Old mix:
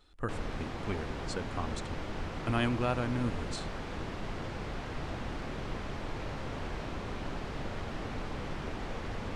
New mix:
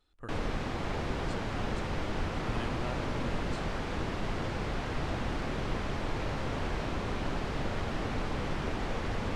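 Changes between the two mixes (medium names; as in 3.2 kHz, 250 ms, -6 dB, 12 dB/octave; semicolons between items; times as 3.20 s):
speech -10.0 dB; background +4.5 dB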